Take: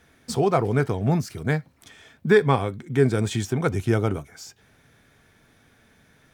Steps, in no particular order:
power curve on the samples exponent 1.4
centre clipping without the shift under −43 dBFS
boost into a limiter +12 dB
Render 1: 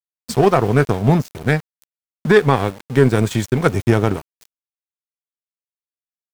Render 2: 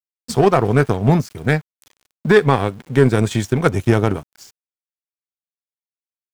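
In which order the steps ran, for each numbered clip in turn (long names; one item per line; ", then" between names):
power curve on the samples, then centre clipping without the shift, then boost into a limiter
power curve on the samples, then boost into a limiter, then centre clipping without the shift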